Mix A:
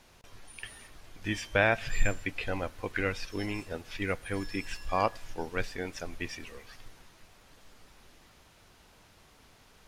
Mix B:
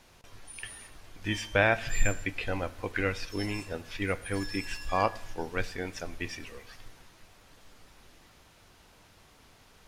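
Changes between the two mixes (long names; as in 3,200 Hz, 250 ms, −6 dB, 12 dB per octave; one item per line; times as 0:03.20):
speech: send +9.0 dB
background +6.5 dB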